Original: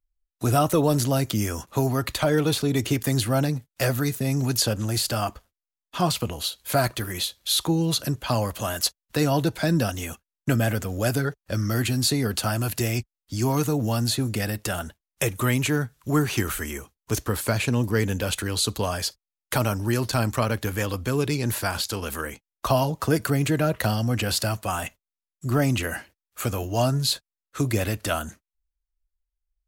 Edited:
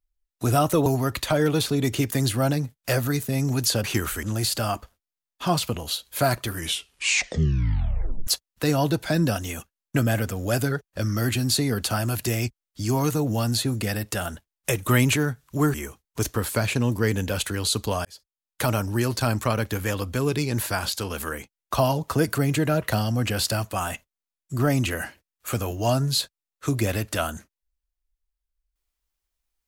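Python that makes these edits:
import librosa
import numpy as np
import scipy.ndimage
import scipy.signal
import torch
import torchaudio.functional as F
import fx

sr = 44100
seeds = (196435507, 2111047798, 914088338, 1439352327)

y = fx.edit(x, sr, fx.cut(start_s=0.86, length_s=0.92),
    fx.tape_stop(start_s=7.01, length_s=1.79),
    fx.clip_gain(start_s=15.42, length_s=0.27, db=3.5),
    fx.move(start_s=16.27, length_s=0.39, to_s=4.76),
    fx.fade_in_span(start_s=18.97, length_s=0.64), tone=tone)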